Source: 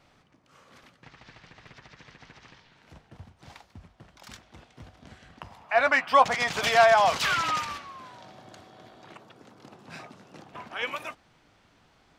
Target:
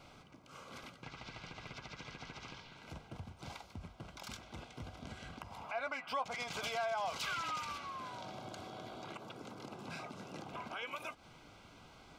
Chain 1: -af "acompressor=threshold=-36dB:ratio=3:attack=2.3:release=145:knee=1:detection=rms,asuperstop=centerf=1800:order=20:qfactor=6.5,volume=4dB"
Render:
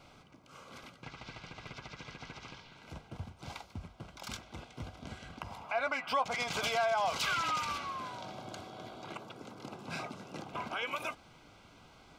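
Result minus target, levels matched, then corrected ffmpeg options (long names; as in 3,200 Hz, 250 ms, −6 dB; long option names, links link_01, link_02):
downward compressor: peak gain reduction −6.5 dB
-af "acompressor=threshold=-45.5dB:ratio=3:attack=2.3:release=145:knee=1:detection=rms,asuperstop=centerf=1800:order=20:qfactor=6.5,volume=4dB"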